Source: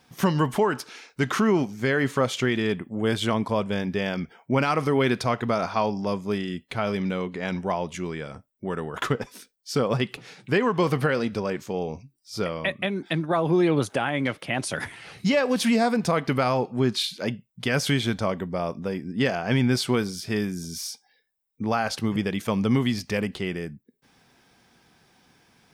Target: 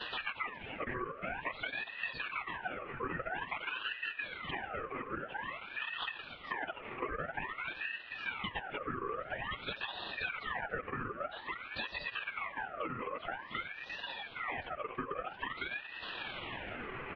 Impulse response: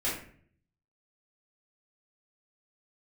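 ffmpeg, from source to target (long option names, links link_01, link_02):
-filter_complex "[0:a]aeval=exprs='val(0)+0.5*0.0282*sgn(val(0))':channel_layout=same,asplit=2[link_01][link_02];[1:a]atrim=start_sample=2205,adelay=115[link_03];[link_02][link_03]afir=irnorm=-1:irlink=0,volume=-25.5dB[link_04];[link_01][link_04]amix=inputs=2:normalize=0,acontrast=70,afftfilt=real='hypot(re,im)*cos(2*PI*random(0))':imag='hypot(re,im)*sin(2*PI*random(1))':win_size=512:overlap=0.75,highpass=frequency=310:width_type=q:width=0.5412,highpass=frequency=310:width_type=q:width=1.307,lowpass=frequency=2800:width_type=q:width=0.5176,lowpass=frequency=2800:width_type=q:width=0.7071,lowpass=frequency=2800:width_type=q:width=1.932,afreqshift=130,asplit=2[link_05][link_06];[link_06]adelay=1633,volume=-17dB,highshelf=frequency=4000:gain=-36.7[link_07];[link_05][link_07]amix=inputs=2:normalize=0,atempo=1.5,aecho=1:1:5.4:0.78,acompressor=threshold=-39dB:ratio=4,asetrate=30296,aresample=44100,atempo=1.45565,aeval=exprs='val(0)*sin(2*PI*1500*n/s+1500*0.5/0.5*sin(2*PI*0.5*n/s))':channel_layout=same,volume=2.5dB"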